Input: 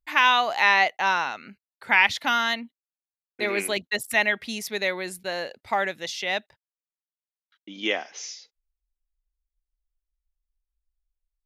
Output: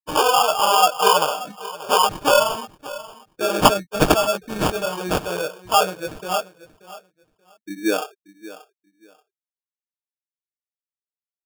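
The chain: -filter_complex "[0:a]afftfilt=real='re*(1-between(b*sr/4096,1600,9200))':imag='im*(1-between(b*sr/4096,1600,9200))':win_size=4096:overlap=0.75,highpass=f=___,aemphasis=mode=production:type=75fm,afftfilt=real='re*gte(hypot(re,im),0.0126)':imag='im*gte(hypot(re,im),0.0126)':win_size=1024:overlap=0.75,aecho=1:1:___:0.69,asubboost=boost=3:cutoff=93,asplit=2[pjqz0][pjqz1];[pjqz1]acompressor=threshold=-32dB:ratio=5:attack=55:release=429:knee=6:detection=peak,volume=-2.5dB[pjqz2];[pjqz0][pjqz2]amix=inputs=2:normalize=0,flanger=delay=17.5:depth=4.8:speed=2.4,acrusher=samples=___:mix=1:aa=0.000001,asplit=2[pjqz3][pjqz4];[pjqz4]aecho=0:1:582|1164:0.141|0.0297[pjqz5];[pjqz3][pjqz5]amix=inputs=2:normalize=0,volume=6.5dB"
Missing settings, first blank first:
55, 6.4, 22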